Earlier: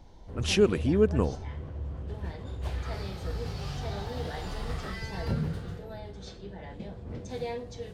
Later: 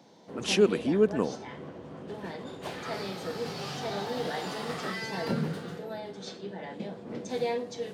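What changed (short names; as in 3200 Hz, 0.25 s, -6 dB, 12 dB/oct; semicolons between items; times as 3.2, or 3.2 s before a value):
background +5.0 dB; master: add HPF 180 Hz 24 dB/oct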